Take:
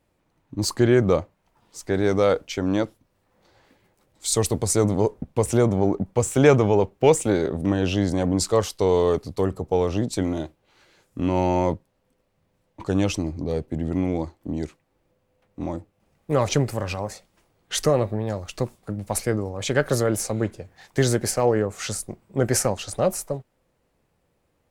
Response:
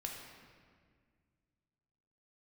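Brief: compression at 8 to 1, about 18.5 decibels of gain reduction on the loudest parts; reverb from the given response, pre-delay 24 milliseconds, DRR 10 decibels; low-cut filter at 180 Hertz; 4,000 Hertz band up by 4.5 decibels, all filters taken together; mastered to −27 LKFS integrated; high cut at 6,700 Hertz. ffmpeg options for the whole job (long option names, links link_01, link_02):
-filter_complex "[0:a]highpass=180,lowpass=6700,equalizer=frequency=4000:width_type=o:gain=6.5,acompressor=threshold=-30dB:ratio=8,asplit=2[link_01][link_02];[1:a]atrim=start_sample=2205,adelay=24[link_03];[link_02][link_03]afir=irnorm=-1:irlink=0,volume=-9dB[link_04];[link_01][link_04]amix=inputs=2:normalize=0,volume=8dB"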